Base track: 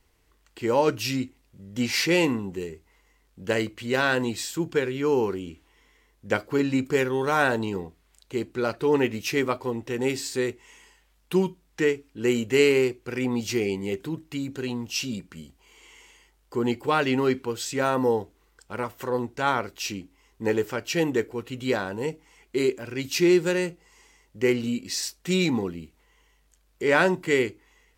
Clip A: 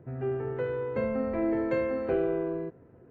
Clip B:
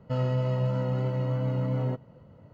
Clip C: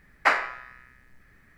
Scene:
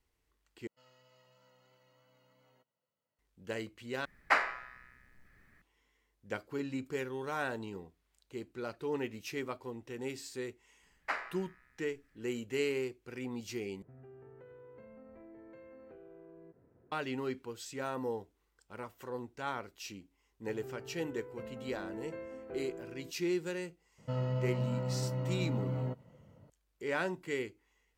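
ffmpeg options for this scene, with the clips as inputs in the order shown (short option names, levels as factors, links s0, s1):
-filter_complex "[2:a]asplit=2[s0][s1];[3:a]asplit=2[s2][s3];[1:a]asplit=2[s4][s5];[0:a]volume=0.2[s6];[s0]aderivative[s7];[s4]acompressor=threshold=0.00891:ratio=6:attack=3.2:release=140:knee=1:detection=peak[s8];[s1]highpass=53[s9];[s6]asplit=4[s10][s11][s12][s13];[s10]atrim=end=0.674[s14];[s7]atrim=end=2.52,asetpts=PTS-STARTPTS,volume=0.224[s15];[s11]atrim=start=3.186:end=4.054[s16];[s2]atrim=end=1.57,asetpts=PTS-STARTPTS,volume=0.473[s17];[s12]atrim=start=5.616:end=13.824[s18];[s8]atrim=end=3.1,asetpts=PTS-STARTPTS,volume=0.282[s19];[s13]atrim=start=16.916[s20];[s3]atrim=end=1.57,asetpts=PTS-STARTPTS,volume=0.178,afade=t=in:d=0.004:c=hsin,afade=t=out:st=1.566:d=0.004:c=hsin,adelay=10830[s21];[s5]atrim=end=3.1,asetpts=PTS-STARTPTS,volume=0.15,afade=t=in:d=0.004:c=hsin,afade=t=out:st=3.096:d=0.004:c=hsin,adelay=20410[s22];[s9]atrim=end=2.52,asetpts=PTS-STARTPTS,volume=0.447,afade=t=in:d=0.004:c=hsin,afade=t=out:st=2.516:d=0.004:c=hsin,adelay=23980[s23];[s14][s15]acrossfade=d=0.004:c1=hsin:c2=hsin[s24];[s24][s16]acrossfade=d=0.004:c1=hsin:c2=hsin[s25];[s25][s17]acrossfade=d=0.004:c1=hsin:c2=hsin[s26];[s26][s18]acrossfade=d=0.004:c1=hsin:c2=hsin[s27];[s27][s19]acrossfade=d=0.004:c1=hsin:c2=hsin[s28];[s28][s20]acrossfade=d=0.004:c1=hsin:c2=hsin[s29];[s29][s21][s22][s23]amix=inputs=4:normalize=0"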